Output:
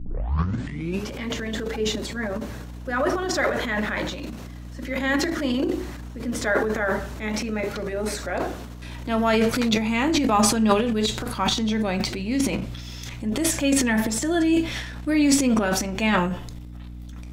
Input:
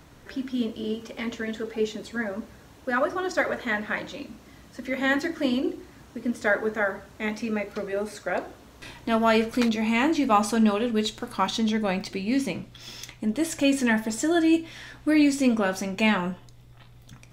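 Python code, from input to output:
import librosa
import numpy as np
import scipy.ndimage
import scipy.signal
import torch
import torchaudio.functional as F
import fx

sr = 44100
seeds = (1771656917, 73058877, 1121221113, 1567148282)

y = fx.tape_start_head(x, sr, length_s=1.12)
y = fx.transient(y, sr, attack_db=-2, sustain_db=12)
y = fx.add_hum(y, sr, base_hz=60, snr_db=13)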